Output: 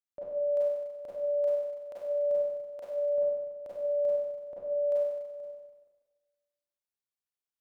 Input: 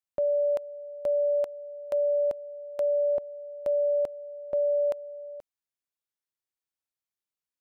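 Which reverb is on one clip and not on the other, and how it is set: Schroeder reverb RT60 1.3 s, combs from 32 ms, DRR -8 dB; gain -13.5 dB

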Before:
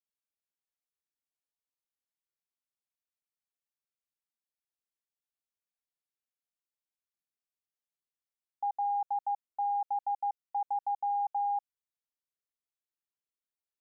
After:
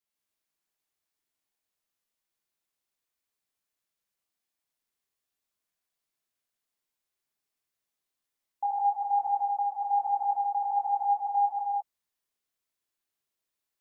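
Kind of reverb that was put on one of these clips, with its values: non-linear reverb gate 0.24 s flat, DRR -4.5 dB; gain +2.5 dB

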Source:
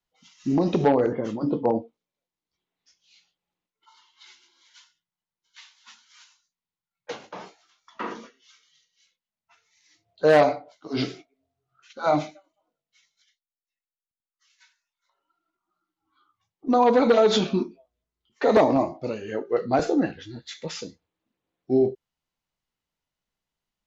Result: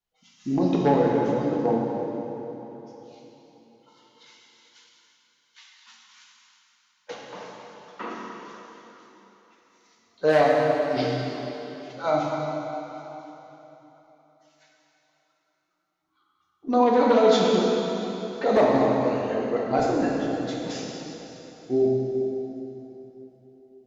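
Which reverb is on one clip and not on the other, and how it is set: plate-style reverb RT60 3.7 s, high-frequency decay 0.85×, DRR -2.5 dB; gain -4 dB

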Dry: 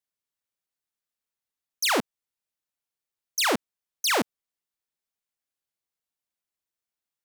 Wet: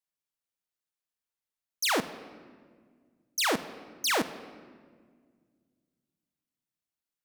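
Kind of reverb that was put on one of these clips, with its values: shoebox room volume 2700 m³, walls mixed, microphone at 0.56 m; gain -3.5 dB

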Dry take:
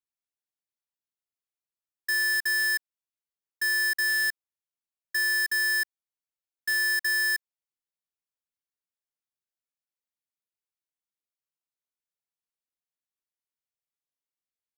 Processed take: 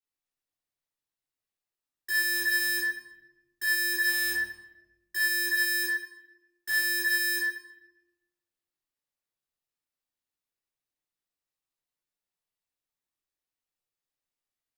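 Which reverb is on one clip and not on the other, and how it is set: shoebox room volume 420 m³, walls mixed, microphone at 3.6 m; gain -6.5 dB

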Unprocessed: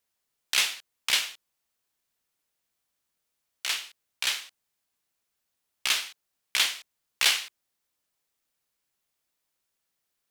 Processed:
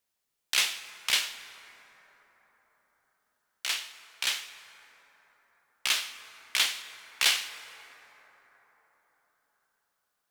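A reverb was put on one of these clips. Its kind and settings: plate-style reverb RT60 4.9 s, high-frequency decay 0.35×, DRR 10.5 dB; gain -1.5 dB

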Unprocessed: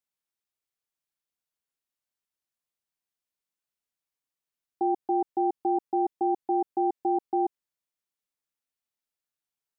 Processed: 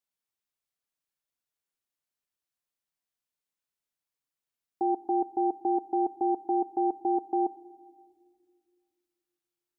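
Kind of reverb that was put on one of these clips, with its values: shoebox room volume 3300 m³, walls mixed, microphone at 0.38 m; gain -1 dB

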